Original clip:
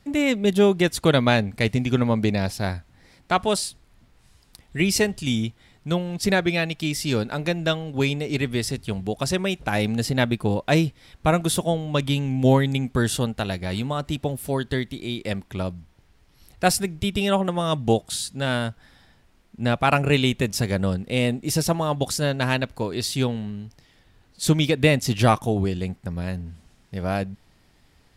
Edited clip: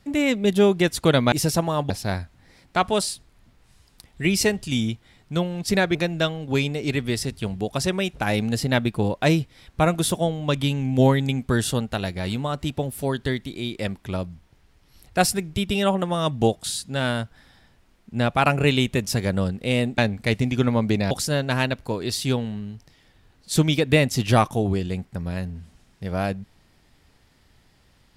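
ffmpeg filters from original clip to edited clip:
-filter_complex "[0:a]asplit=6[a][b][c][d][e][f];[a]atrim=end=1.322[g];[b]atrim=start=21.438:end=22.022[h];[c]atrim=start=2.448:end=6.502[i];[d]atrim=start=7.408:end=21.442[j];[e]atrim=start=1.318:end=2.452[k];[f]atrim=start=22.018[l];[g][h]acrossfade=d=0.004:c1=hsin:c2=hsin[m];[m][i]acrossfade=d=0.004:c1=hsin:c2=hsin[n];[n][j]acrossfade=d=0.004:c1=hsin:c2=hsin[o];[o][k]acrossfade=d=0.004:c1=hsin:c2=hsin[p];[p][l]acrossfade=d=0.004:c1=hsin:c2=hsin"

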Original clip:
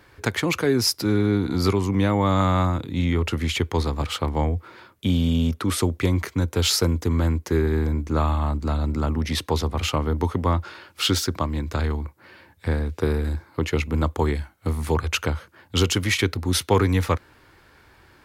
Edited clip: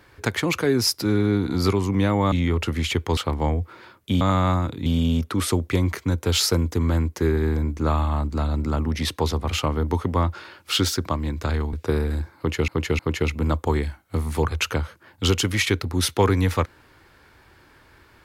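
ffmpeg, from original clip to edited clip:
-filter_complex "[0:a]asplit=8[a][b][c][d][e][f][g][h];[a]atrim=end=2.322[i];[b]atrim=start=2.968:end=3.822[j];[c]atrim=start=4.118:end=5.162[k];[d]atrim=start=2.318:end=2.972[l];[e]atrim=start=5.158:end=12.032[m];[f]atrim=start=12.868:end=13.822[n];[g]atrim=start=13.508:end=13.822[o];[h]atrim=start=13.508[p];[i][j]acrossfade=d=0.004:c1=hsin:c2=hsin[q];[q][k]acrossfade=d=0.004:c1=hsin:c2=hsin[r];[r][l]acrossfade=d=0.004:c1=hsin:c2=hsin[s];[s][m]acrossfade=d=0.004:c1=hsin:c2=hsin[t];[t][n]acrossfade=d=0.004:c1=hsin:c2=hsin[u];[u][o]acrossfade=d=0.004:c1=hsin:c2=hsin[v];[v][p]acrossfade=d=0.004:c1=hsin:c2=hsin"

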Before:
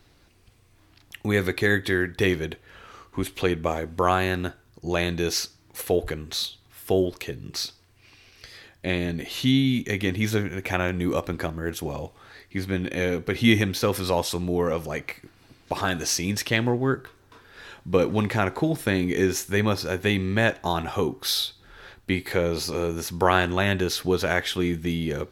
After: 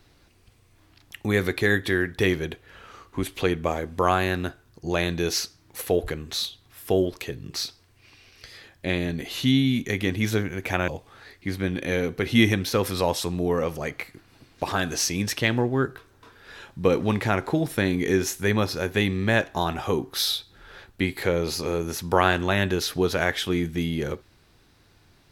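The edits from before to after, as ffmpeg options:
-filter_complex "[0:a]asplit=2[a][b];[a]atrim=end=10.882[c];[b]atrim=start=11.968[d];[c][d]acrossfade=d=0.004:c1=hsin:c2=hsin"

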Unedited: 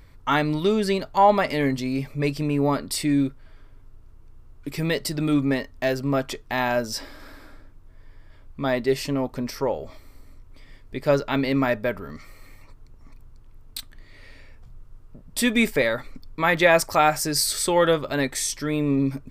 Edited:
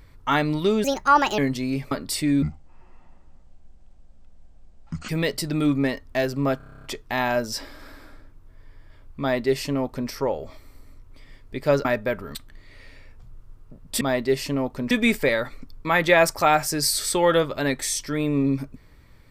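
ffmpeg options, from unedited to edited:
-filter_complex "[0:a]asplit=19[a][b][c][d][e][f][g][h][i][j][k][l][m][n][o][p][q][r][s];[a]atrim=end=0.844[t];[b]atrim=start=0.84:end=1.61,asetpts=PTS-STARTPTS,asetrate=62622,aresample=44100,atrim=end_sample=23913,asetpts=PTS-STARTPTS[u];[c]atrim=start=1.606:end=2.142[v];[d]atrim=start=2.728:end=3.244[w];[e]atrim=start=3.24:end=4.76,asetpts=PTS-STARTPTS,asetrate=25137,aresample=44100,atrim=end_sample=117600,asetpts=PTS-STARTPTS[x];[f]atrim=start=4.756:end=6.272[y];[g]atrim=start=6.238:end=6.272[z];[h]atrim=start=6.238:end=6.272[aa];[i]atrim=start=6.238:end=6.272[ab];[j]atrim=start=6.238:end=6.272[ac];[k]atrim=start=6.238:end=6.272[ad];[l]atrim=start=6.238:end=6.272[ae];[m]atrim=start=6.238:end=6.272[af];[n]atrim=start=6.238:end=6.272[ag];[o]atrim=start=6.238:end=11.252[ah];[p]atrim=start=11.628:end=12.132[ai];[q]atrim=start=13.778:end=15.442[aj];[r]atrim=start=8.598:end=9.502[ak];[s]atrim=start=15.438[al];[t][u]acrossfade=d=0.004:c1=hsin:c2=hsin[am];[am][v]acrossfade=d=0.004:c1=hsin:c2=hsin[an];[an][w]acrossfade=d=0.004:c1=hsin:c2=hsin[ao];[ao][x]acrossfade=d=0.004:c1=hsin:c2=hsin[ap];[ap][y]acrossfade=d=0.004:c1=hsin:c2=hsin[aq];[aq][z]acrossfade=d=0.004:c1=hsin:c2=hsin[ar];[ar][aa]acrossfade=d=0.004:c1=hsin:c2=hsin[as];[as][ab]acrossfade=d=0.004:c1=hsin:c2=hsin[at];[at][ac]acrossfade=d=0.004:c1=hsin:c2=hsin[au];[au][ad]acrossfade=d=0.004:c1=hsin:c2=hsin[av];[av][ae]acrossfade=d=0.004:c1=hsin:c2=hsin[aw];[aw][af]acrossfade=d=0.004:c1=hsin:c2=hsin[ax];[ax][ag]acrossfade=d=0.004:c1=hsin:c2=hsin[ay];[ay][ah]acrossfade=d=0.004:c1=hsin:c2=hsin[az];[az][ai]acrossfade=d=0.004:c1=hsin:c2=hsin[ba];[ba][aj]acrossfade=d=0.004:c1=hsin:c2=hsin[bb];[bb][ak]acrossfade=d=0.004:c1=hsin:c2=hsin[bc];[bc][al]acrossfade=d=0.004:c1=hsin:c2=hsin"

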